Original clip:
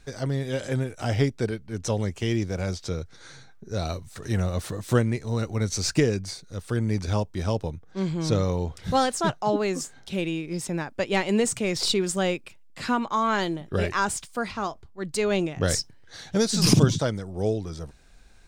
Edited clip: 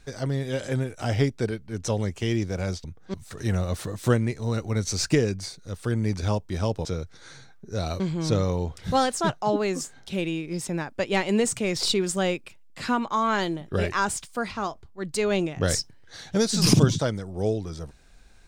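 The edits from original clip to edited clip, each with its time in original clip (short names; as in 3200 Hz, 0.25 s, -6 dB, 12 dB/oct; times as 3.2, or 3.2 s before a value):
2.84–3.99 swap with 7.7–8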